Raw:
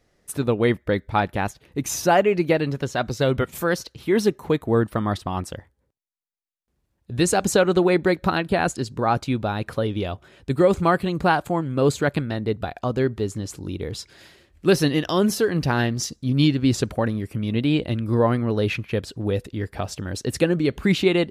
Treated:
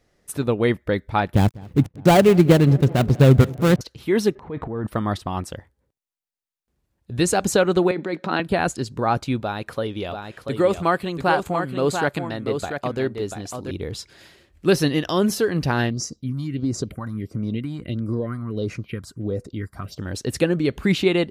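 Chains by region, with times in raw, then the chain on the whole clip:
1.34–3.81 s: dead-time distortion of 0.22 ms + peaking EQ 120 Hz +13 dB 2.9 oct + filtered feedback delay 199 ms, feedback 77%, low-pass 2.5 kHz, level -22 dB
4.35–4.87 s: low-pass 2 kHz + compression 3:1, threshold -24 dBFS + transient shaper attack -7 dB, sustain +12 dB
7.91–8.40 s: compressor with a negative ratio -23 dBFS + high-pass 180 Hz 24 dB/octave + distance through air 76 m
9.40–13.71 s: bass shelf 230 Hz -7.5 dB + delay 688 ms -6.5 dB
15.90–19.99 s: compression 3:1, threshold -20 dBFS + phase shifter stages 4, 1.5 Hz, lowest notch 430–3300 Hz + comb of notches 870 Hz
whole clip: none

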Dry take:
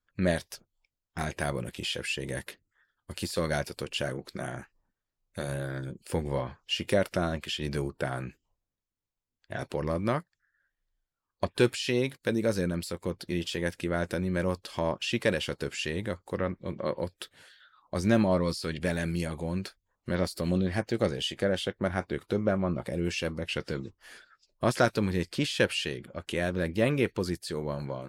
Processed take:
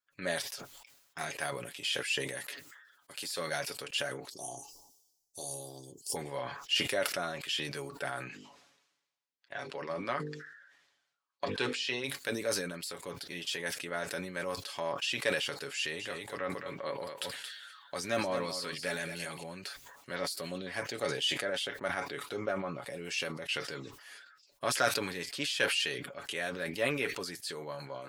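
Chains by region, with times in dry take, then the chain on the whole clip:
2.43–3.26 s: high-pass 190 Hz 6 dB/octave + hard clipper -22 dBFS
4.30–6.16 s: elliptic band-stop 950–3100 Hz + resonant high shelf 4.4 kHz +7 dB, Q 3 + comb 2.6 ms, depth 45%
8.28–12.04 s: band-pass 110–5400 Hz + hum notches 50/100/150/200/250/300/350/400/450/500 Hz
15.77–19.43 s: delay 224 ms -10 dB + tape noise reduction on one side only encoder only
whole clip: high-pass 1.1 kHz 6 dB/octave; comb 7.1 ms, depth 55%; decay stretcher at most 53 dB/s; trim -1.5 dB

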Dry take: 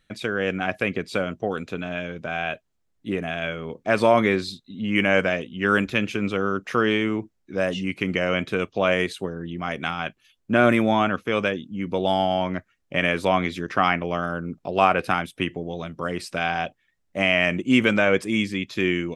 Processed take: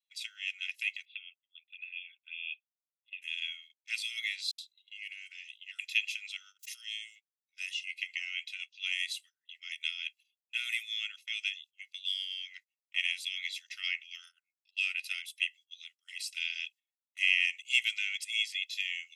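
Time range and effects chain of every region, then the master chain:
1.05–3.22 s: touch-sensitive flanger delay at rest 4.2 ms, full sweep at -24.5 dBFS + rippled Chebyshev low-pass 3.6 kHz, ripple 6 dB
4.51–5.79 s: compression 4:1, threshold -30 dBFS + phase dispersion highs, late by 73 ms, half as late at 580 Hz
6.59–7.16 s: differentiator + swell ahead of each attack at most 39 dB/s
7.85–8.84 s: treble shelf 6.3 kHz -9.5 dB + doubling 13 ms -12 dB
whole clip: steep high-pass 2.3 kHz 48 dB/octave; gate -52 dBFS, range -20 dB; comb 1.5 ms, depth 92%; trim -3.5 dB

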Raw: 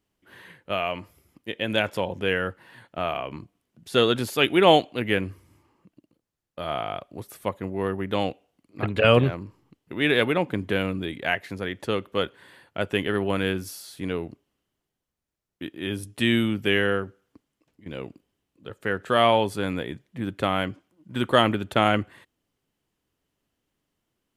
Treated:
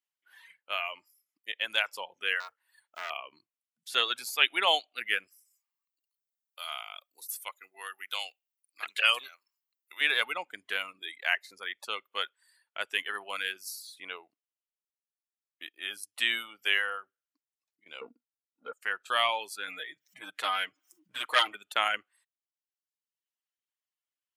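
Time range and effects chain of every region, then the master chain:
2.40–3.10 s: block-companded coder 7-bit + transformer saturation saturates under 1.9 kHz
5.27–10.01 s: high-pass 1.3 kHz 6 dB/octave + treble shelf 5.4 kHz +11.5 dB
18.01–18.73 s: waveshaping leveller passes 2 + tape spacing loss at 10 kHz 35 dB + small resonant body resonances 240/470/1400/3800 Hz, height 17 dB, ringing for 85 ms
19.67–21.55 s: comb 6.5 ms, depth 87% + upward compressor, threshold -28 dBFS + transformer saturation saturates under 1.4 kHz
whole clip: reverb removal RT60 1.2 s; high-pass 1.3 kHz 12 dB/octave; spectral noise reduction 11 dB

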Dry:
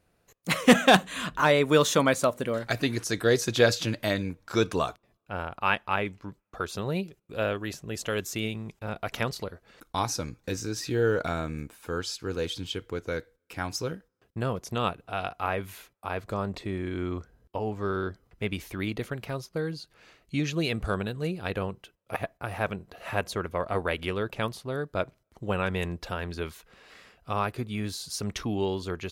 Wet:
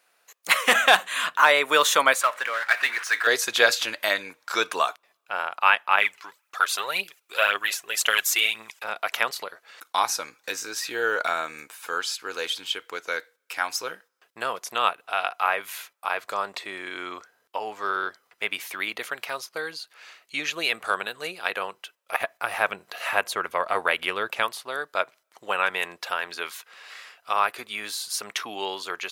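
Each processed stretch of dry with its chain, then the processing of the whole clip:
2.21–3.27 s: band-pass filter 1.7 kHz, Q 1.4 + power-law waveshaper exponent 0.7
5.98–8.84 s: tilt shelf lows -6 dB, about 880 Hz + phaser 1.9 Hz, feedback 53%
22.20–24.43 s: bass shelf 220 Hz +11.5 dB + tape noise reduction on one side only encoder only
whole clip: high-pass 980 Hz 12 dB/octave; dynamic bell 5.5 kHz, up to -6 dB, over -47 dBFS, Q 0.95; loudness maximiser +13 dB; trim -3 dB

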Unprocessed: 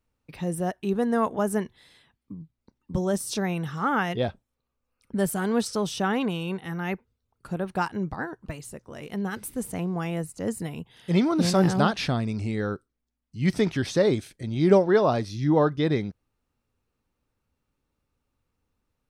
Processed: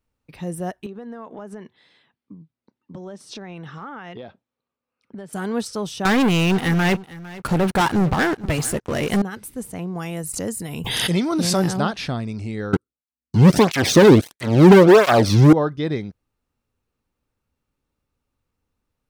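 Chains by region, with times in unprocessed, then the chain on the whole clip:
0.86–5.33 s: band-pass 170–4300 Hz + compression 16:1, threshold -31 dBFS
6.05–9.22 s: waveshaping leveller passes 5 + delay 454 ms -18 dB
9.95–11.77 s: treble shelf 4.8 kHz +10.5 dB + swell ahead of each attack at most 29 dB/s
12.73–15.53 s: bass shelf 170 Hz +11 dB + waveshaping leveller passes 5 + cancelling through-zero flanger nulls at 1.5 Hz, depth 1.8 ms
whole clip: none

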